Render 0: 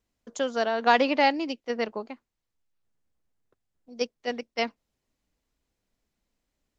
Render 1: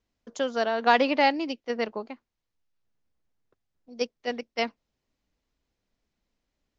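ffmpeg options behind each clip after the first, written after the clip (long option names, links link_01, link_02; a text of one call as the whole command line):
ffmpeg -i in.wav -af "lowpass=frequency=6500:width=0.5412,lowpass=frequency=6500:width=1.3066" out.wav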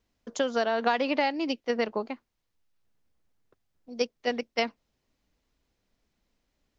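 ffmpeg -i in.wav -af "acompressor=threshold=-26dB:ratio=6,volume=4dB" out.wav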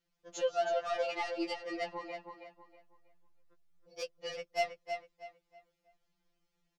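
ffmpeg -i in.wav -filter_complex "[0:a]asoftclip=type=tanh:threshold=-21dB,asplit=2[link_01][link_02];[link_02]adelay=321,lowpass=frequency=4400:poles=1,volume=-6dB,asplit=2[link_03][link_04];[link_04]adelay=321,lowpass=frequency=4400:poles=1,volume=0.31,asplit=2[link_05][link_06];[link_06]adelay=321,lowpass=frequency=4400:poles=1,volume=0.31,asplit=2[link_07][link_08];[link_08]adelay=321,lowpass=frequency=4400:poles=1,volume=0.31[link_09];[link_03][link_05][link_07][link_09]amix=inputs=4:normalize=0[link_10];[link_01][link_10]amix=inputs=2:normalize=0,afftfilt=real='re*2.83*eq(mod(b,8),0)':imag='im*2.83*eq(mod(b,8),0)':win_size=2048:overlap=0.75,volume=-3dB" out.wav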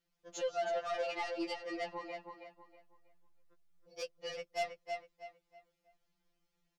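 ffmpeg -i in.wav -af "asoftclip=type=tanh:threshold=-27.5dB,volume=-1dB" out.wav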